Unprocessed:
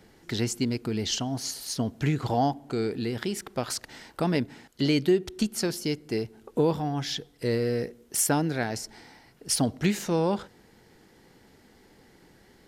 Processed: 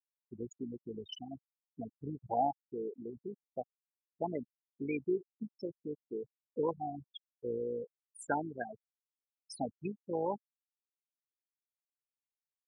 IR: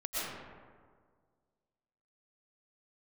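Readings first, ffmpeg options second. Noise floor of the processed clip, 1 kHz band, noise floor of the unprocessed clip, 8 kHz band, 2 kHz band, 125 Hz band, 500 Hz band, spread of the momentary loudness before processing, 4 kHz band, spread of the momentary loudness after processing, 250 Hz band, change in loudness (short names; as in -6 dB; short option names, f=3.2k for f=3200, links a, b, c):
under -85 dBFS, -5.5 dB, -58 dBFS, -27.0 dB, -13.5 dB, -19.5 dB, -9.0 dB, 8 LU, -21.0 dB, 14 LU, -13.5 dB, -11.5 dB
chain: -af "afftfilt=real='re*gte(hypot(re,im),0.158)':imag='im*gte(hypot(re,im),0.158)':win_size=1024:overlap=0.75,bandpass=f=1.3k:t=q:w=0.89:csg=0,tremolo=f=54:d=0.4,volume=1dB"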